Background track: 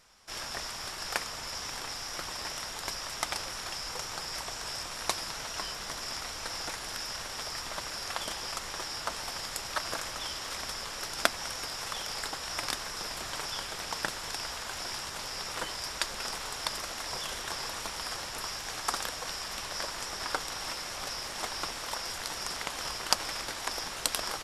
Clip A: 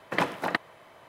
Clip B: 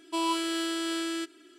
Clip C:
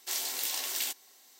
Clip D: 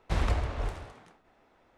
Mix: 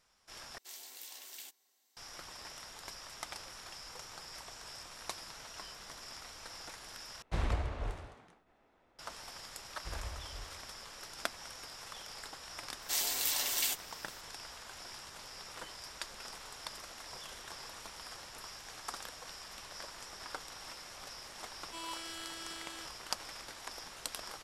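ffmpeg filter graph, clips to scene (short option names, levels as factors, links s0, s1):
-filter_complex "[3:a]asplit=2[s0][s1];[4:a]asplit=2[s2][s3];[0:a]volume=0.282[s4];[s3]equalizer=f=250:t=o:w=1.8:g=-8[s5];[s1]aecho=1:1:6.9:0.55[s6];[2:a]highpass=f=1300:p=1[s7];[s4]asplit=3[s8][s9][s10];[s8]atrim=end=0.584[s11];[s0]atrim=end=1.39,asetpts=PTS-STARTPTS,volume=0.158[s12];[s9]atrim=start=1.966:end=7.224[s13];[s2]atrim=end=1.77,asetpts=PTS-STARTPTS,volume=0.531[s14];[s10]atrim=start=8.986[s15];[s5]atrim=end=1.77,asetpts=PTS-STARTPTS,volume=0.188,afade=t=in:d=0.004:c=hsin,afade=t=out:st=1.766:d=0.004:c=hsin,adelay=9750[s16];[s6]atrim=end=1.39,asetpts=PTS-STARTPTS,volume=0.891,afade=t=in:d=0.004:c=hsin,afade=t=out:st=1.386:d=0.004:c=hsin,adelay=12820[s17];[s7]atrim=end=1.58,asetpts=PTS-STARTPTS,volume=0.282,afade=t=in:d=0.004:c=hsin,afade=t=out:st=1.576:d=0.004:c=hsin,adelay=21600[s18];[s11][s12]acrossfade=d=0.004:c1=hsin:c2=hsin[s19];[s19][s13]acrossfade=d=0.004:c1=hsin:c2=hsin[s20];[s20][s14]acrossfade=d=0.004:c1=hsin:c2=hsin[s21];[s21][s15]acrossfade=d=0.004:c1=hsin:c2=hsin[s22];[s22][s16][s17][s18]amix=inputs=4:normalize=0"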